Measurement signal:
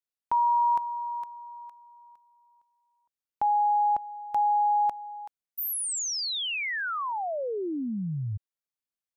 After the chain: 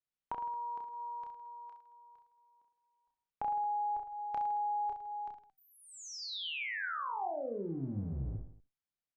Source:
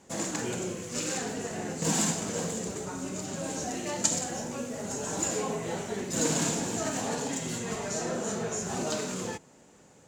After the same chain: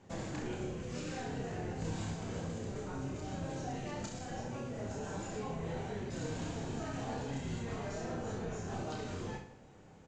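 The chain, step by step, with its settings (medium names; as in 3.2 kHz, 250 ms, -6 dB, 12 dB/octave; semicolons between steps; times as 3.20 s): octave divider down 1 oct, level +1 dB; compression 4:1, threshold -35 dBFS; distance through air 150 m; feedback comb 770 Hz, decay 0.21 s, harmonics all, mix 60%; reverse bouncing-ball echo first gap 30 ms, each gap 1.2×, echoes 5; trim +4 dB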